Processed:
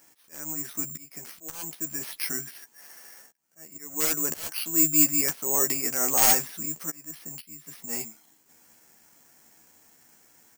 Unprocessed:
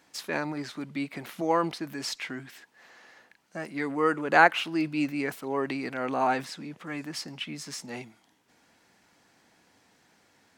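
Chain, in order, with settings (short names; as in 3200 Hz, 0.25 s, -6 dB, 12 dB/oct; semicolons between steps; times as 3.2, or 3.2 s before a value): wrapped overs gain 18 dB; auto swell 0.586 s; doubler 13 ms -6 dB; careless resampling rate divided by 6×, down filtered, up zero stuff; gain -2 dB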